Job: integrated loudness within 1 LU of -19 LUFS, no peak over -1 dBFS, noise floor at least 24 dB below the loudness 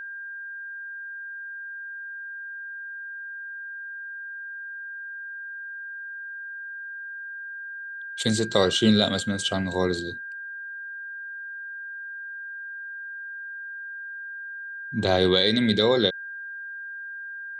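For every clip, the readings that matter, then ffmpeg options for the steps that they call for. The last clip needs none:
steady tone 1600 Hz; tone level -34 dBFS; loudness -28.5 LUFS; peak -6.5 dBFS; loudness target -19.0 LUFS
-> -af "bandreject=f=1.6k:w=30"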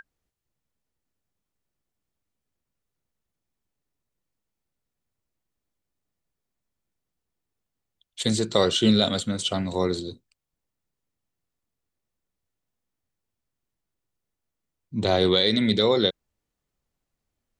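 steady tone none; loudness -22.5 LUFS; peak -7.0 dBFS; loudness target -19.0 LUFS
-> -af "volume=3.5dB"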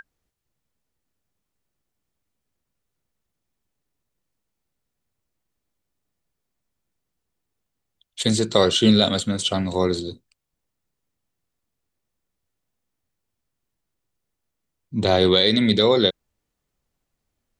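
loudness -19.0 LUFS; peak -3.5 dBFS; noise floor -81 dBFS

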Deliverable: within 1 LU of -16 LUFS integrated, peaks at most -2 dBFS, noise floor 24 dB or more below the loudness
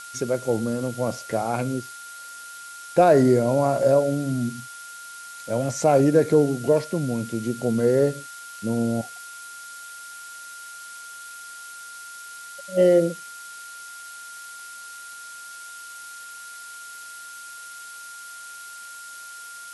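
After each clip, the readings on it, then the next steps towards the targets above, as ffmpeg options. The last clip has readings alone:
steady tone 1400 Hz; tone level -39 dBFS; noise floor -40 dBFS; noise floor target -46 dBFS; loudness -22.0 LUFS; peak -6.5 dBFS; loudness target -16.0 LUFS
-> -af "bandreject=f=1.4k:w=30"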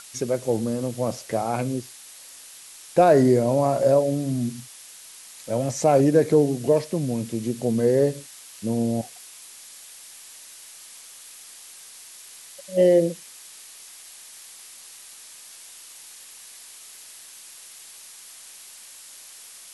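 steady tone none; noise floor -45 dBFS; noise floor target -46 dBFS
-> -af "afftdn=nr=6:nf=-45"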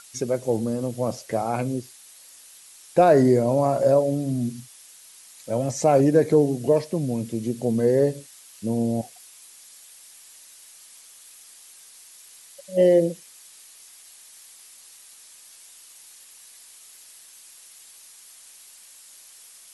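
noise floor -49 dBFS; loudness -22.0 LUFS; peak -6.5 dBFS; loudness target -16.0 LUFS
-> -af "volume=6dB,alimiter=limit=-2dB:level=0:latency=1"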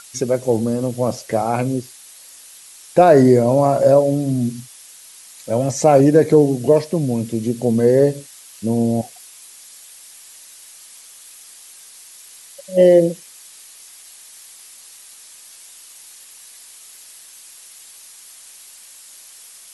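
loudness -16.5 LUFS; peak -2.0 dBFS; noise floor -43 dBFS

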